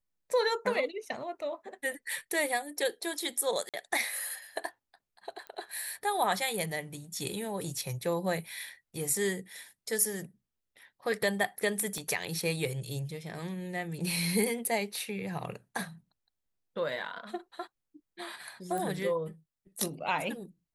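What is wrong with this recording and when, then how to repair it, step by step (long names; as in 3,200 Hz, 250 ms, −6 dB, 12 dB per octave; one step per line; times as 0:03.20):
0:03.69–0:03.74: drop-out 47 ms
0:05.47: click −29 dBFS
0:11.98: click −24 dBFS
0:18.78: click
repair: click removal
repair the gap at 0:03.69, 47 ms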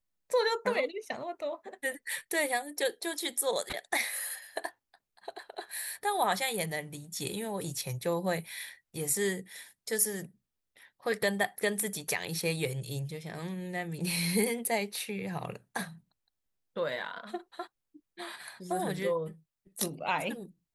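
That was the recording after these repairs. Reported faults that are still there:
0:11.98: click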